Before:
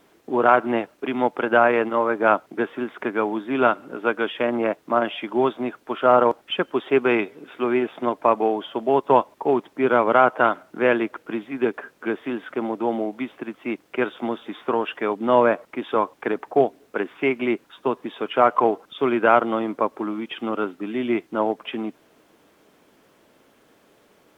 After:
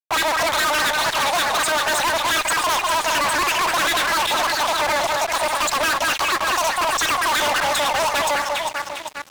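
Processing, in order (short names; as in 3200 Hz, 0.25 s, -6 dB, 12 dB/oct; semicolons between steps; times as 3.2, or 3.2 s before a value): echo with dull and thin repeats by turns 0.525 s, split 840 Hz, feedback 69%, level -9 dB; fuzz box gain 36 dB, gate -45 dBFS; wide varispeed 2.62×; gain -5 dB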